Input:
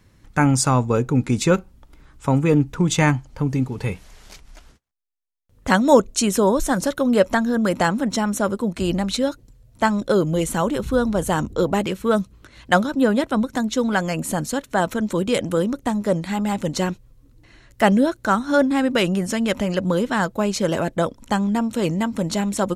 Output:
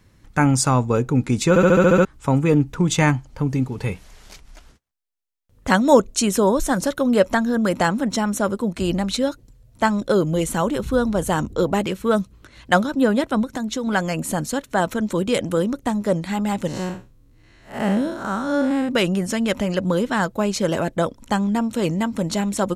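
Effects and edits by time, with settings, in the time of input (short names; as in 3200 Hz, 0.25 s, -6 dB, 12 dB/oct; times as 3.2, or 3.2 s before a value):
1.49 stutter in place 0.07 s, 8 plays
13.43–13.87 compressor, threshold -21 dBFS
16.67–18.89 time blur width 0.163 s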